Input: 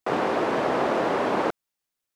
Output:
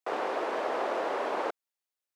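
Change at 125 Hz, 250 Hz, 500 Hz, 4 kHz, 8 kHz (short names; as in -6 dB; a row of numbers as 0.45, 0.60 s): under -20 dB, -13.0 dB, -7.0 dB, -7.0 dB, -7.0 dB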